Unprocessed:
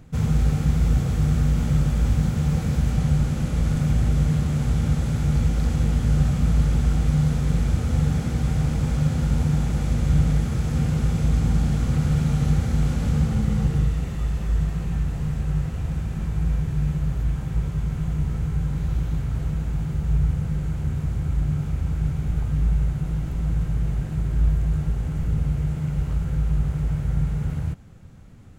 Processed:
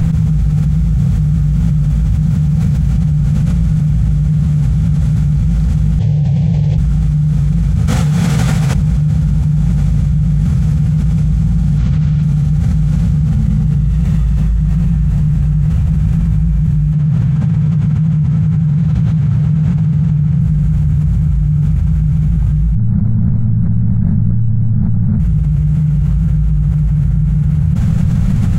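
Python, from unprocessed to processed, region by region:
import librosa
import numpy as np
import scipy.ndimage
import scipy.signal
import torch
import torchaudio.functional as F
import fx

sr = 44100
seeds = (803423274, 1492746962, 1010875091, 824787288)

y = fx.chain(x, sr, fx.highpass(hz=100.0, slope=24),
    fx.air_absorb(metres=140.0),
    fx.fixed_phaser(hz=540.0, stages=4), at=(5.99, 6.78))
y = fx.chain(y, sr, fx.highpass(hz=590.0, slope=6),
    fx.detune_double(cents=49), at=(7.86, 8.75))
y = fx.chain(y, sr, fx.lowpass(hz=3900.0, slope=12),
    fx.high_shelf(hz=2900.0, db=10.0), at=(11.78, 12.23))
y = fx.chain(y, sr, fx.highpass(hz=94.0, slope=24),
    fx.air_absorb(metres=55.0), at=(16.93, 20.41))
y = fx.chain(y, sr, fx.moving_average(points=15),
    fx.ring_mod(carrier_hz=59.0), at=(22.75, 25.2))
y = fx.low_shelf_res(y, sr, hz=220.0, db=8.0, q=3.0)
y = fx.env_flatten(y, sr, amount_pct=100)
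y = F.gain(torch.from_numpy(y), -7.5).numpy()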